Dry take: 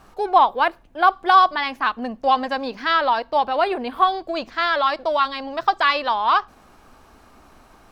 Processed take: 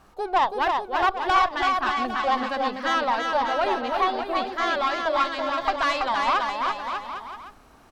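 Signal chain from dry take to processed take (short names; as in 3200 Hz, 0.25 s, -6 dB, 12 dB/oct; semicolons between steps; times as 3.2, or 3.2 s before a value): tube stage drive 12 dB, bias 0.5; bouncing-ball echo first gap 0.33 s, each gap 0.8×, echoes 5; gain -2.5 dB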